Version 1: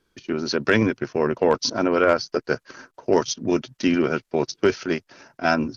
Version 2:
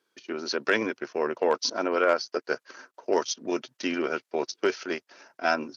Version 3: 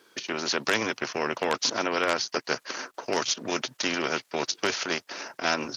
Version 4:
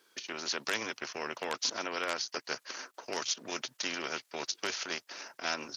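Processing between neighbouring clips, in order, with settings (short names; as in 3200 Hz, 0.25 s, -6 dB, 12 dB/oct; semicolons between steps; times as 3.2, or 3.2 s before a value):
HPF 380 Hz 12 dB/oct; gain -3.5 dB
spectral compressor 2:1
tilt +1.5 dB/oct; gain -9 dB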